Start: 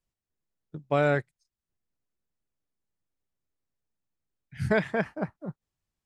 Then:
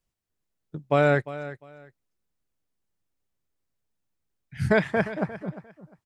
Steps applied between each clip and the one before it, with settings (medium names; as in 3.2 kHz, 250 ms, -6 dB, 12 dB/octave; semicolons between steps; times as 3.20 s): feedback delay 351 ms, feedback 22%, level -15 dB; trim +3.5 dB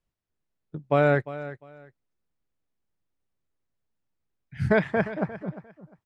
low-pass 2.7 kHz 6 dB/octave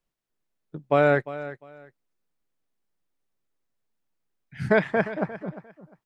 peaking EQ 72 Hz -14.5 dB 1.4 oct; trim +2 dB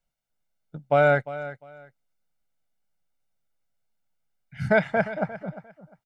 comb 1.4 ms, depth 64%; trim -1.5 dB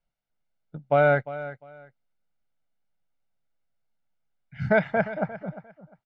distance through air 170 m